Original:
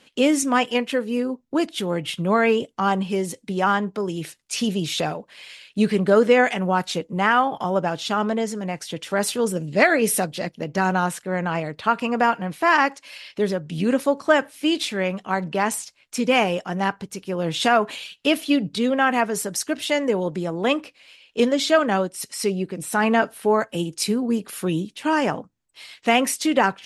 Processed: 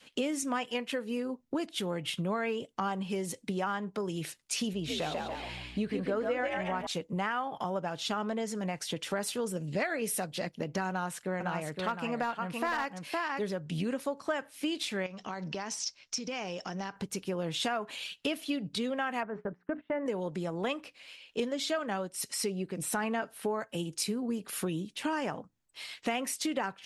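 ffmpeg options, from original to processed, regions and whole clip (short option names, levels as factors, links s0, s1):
-filter_complex "[0:a]asettb=1/sr,asplit=3[s0][s1][s2];[s0]atrim=end=4.734[s3];[s1]atrim=start=4.73:end=6.87,asetpts=PTS-STARTPTS,afade=t=in:d=0.004:c=qsin,afade=t=out:st=2.136:d=0.004:c=qsin,bass=f=250:g=-2,treble=f=4000:g=-8,aeval=exprs='val(0)+0.00501*(sin(2*PI*60*n/s)+sin(2*PI*2*60*n/s)/2+sin(2*PI*3*60*n/s)/3+sin(2*PI*4*60*n/s)/4+sin(2*PI*5*60*n/s)/5)':c=same,asplit=5[s4][s5][s6][s7][s8];[s5]adelay=142,afreqshift=63,volume=0.631[s9];[s6]adelay=284,afreqshift=126,volume=0.214[s10];[s7]adelay=426,afreqshift=189,volume=0.0733[s11];[s8]adelay=568,afreqshift=252,volume=0.0248[s12];[s4][s9][s10][s11][s12]amix=inputs=5:normalize=0,atrim=end_sample=94374[s13];[s2]atrim=start=6.866[s14];[s3][s13]acrossfade=d=0.004:c1=hsin:c2=qsin[s15];[s15][s14]acrossfade=d=0.004:c1=qsin:c2=hsin,asettb=1/sr,asplit=3[s16][s17][s18];[s16]atrim=end=10.894[s19];[s17]atrim=start=10.89:end=13.49,asetpts=PTS-STARTPTS,afade=t=in:d=0.004:c=qsin,afade=t=out:st=2.596:d=0.004:c=qsin,aecho=1:1:513:0.501,atrim=end_sample=114660,asoftclip=type=hard:threshold=0.316[s20];[s18]atrim=start=13.486[s21];[s19][s20]acrossfade=d=0.004:c1=hsin:c2=qsin[s22];[s22][s21]acrossfade=d=0.004:c1=qsin:c2=hsin,asettb=1/sr,asplit=3[s23][s24][s25];[s23]atrim=end=15.064[s26];[s24]atrim=start=15.06:end=16.96,asetpts=PTS-STARTPTS,afade=t=in:d=0.004:c=qsin,afade=t=out:st=1.896:d=0.004:c=qsin,acompressor=threshold=0.0224:ratio=5:attack=3.2:release=140:knee=1:detection=peak,lowpass=f=5600:t=q:w=5.2[s27];[s25]atrim=start=16.956[s28];[s26][s27]acrossfade=d=0.004:c1=hsin:c2=qsin[s29];[s29][s28]acrossfade=d=0.004:c1=qsin:c2=hsin,asettb=1/sr,asplit=3[s30][s31][s32];[s30]atrim=end=19.234[s33];[s31]atrim=start=19.23:end=20.06,asetpts=PTS-STARTPTS,afade=t=in:d=0.004:c=qsin,afade=t=out:st=0.826:d=0.004:c=qsin,lowpass=f=1700:w=0.5412,lowpass=f=1700:w=1.3066,bandreject=f=60:t=h:w=6,bandreject=f=120:t=h:w=6,bandreject=f=180:t=h:w=6,bandreject=f=240:t=h:w=6,bandreject=f=300:t=h:w=6,bandreject=f=360:t=h:w=6,bandreject=f=420:t=h:w=6,agate=range=0.1:threshold=0.0158:ratio=16:release=100:detection=peak[s34];[s32]atrim=start=20.056[s35];[s33][s34]acrossfade=d=0.004:c1=hsin:c2=qsin[s36];[s36][s35]acrossfade=d=0.004:c1=qsin:c2=hsin,adynamicequalizer=threshold=0.0251:dfrequency=310:dqfactor=0.96:tfrequency=310:tqfactor=0.96:attack=5:release=100:ratio=0.375:range=2:mode=cutabove:tftype=bell,acompressor=threshold=0.0316:ratio=4,volume=0.841"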